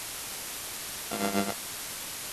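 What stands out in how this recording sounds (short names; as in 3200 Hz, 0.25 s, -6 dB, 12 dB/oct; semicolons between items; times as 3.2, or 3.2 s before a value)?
a buzz of ramps at a fixed pitch in blocks of 64 samples; tremolo triangle 7.4 Hz, depth 80%; a quantiser's noise floor 6-bit, dither triangular; MP2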